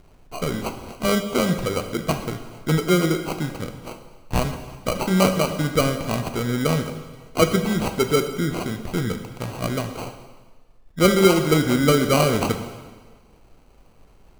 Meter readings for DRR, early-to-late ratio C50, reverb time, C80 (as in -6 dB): 6.0 dB, 8.5 dB, 1.4 s, 10.5 dB